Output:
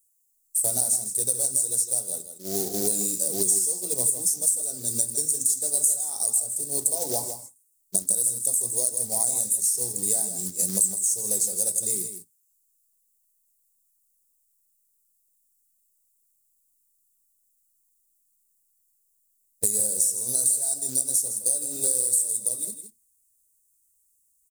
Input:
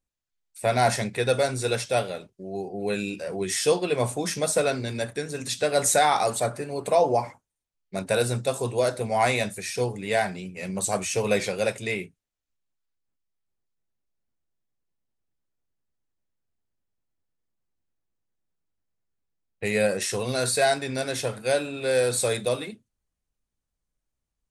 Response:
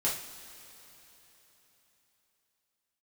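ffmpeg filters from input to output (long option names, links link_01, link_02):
-filter_complex "[0:a]agate=range=-10dB:threshold=-36dB:ratio=16:detection=peak,firequalizer=gain_entry='entry(120,0);entry(280,3);entry(1900,-18);entry(5200,-3);entry(7900,13)':delay=0.05:min_phase=1,acrusher=bits=4:mode=log:mix=0:aa=0.000001,aexciter=amount=12:drive=2.5:freq=4100,acompressor=threshold=-22dB:ratio=12,asplit=2[link_01][link_02];[link_02]aecho=0:1:161:0.335[link_03];[link_01][link_03]amix=inputs=2:normalize=0,volume=1dB"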